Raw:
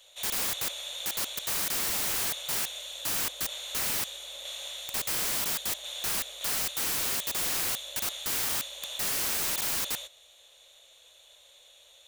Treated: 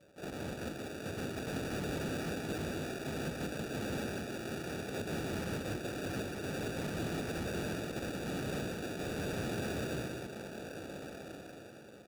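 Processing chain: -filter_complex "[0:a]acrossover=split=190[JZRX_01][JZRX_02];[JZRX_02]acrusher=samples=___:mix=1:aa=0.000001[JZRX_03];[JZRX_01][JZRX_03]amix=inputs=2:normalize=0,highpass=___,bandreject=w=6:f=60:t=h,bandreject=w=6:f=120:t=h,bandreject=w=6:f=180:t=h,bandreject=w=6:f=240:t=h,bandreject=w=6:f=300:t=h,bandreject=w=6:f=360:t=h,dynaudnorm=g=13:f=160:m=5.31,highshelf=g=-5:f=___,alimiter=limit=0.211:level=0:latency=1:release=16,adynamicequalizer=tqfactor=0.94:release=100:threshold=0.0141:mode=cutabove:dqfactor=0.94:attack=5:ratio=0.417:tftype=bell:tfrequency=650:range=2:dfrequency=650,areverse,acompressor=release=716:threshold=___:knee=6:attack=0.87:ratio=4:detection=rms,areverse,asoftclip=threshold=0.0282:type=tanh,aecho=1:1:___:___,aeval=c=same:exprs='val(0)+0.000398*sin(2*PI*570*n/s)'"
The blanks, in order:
42, 81, 11000, 0.02, 186, 0.631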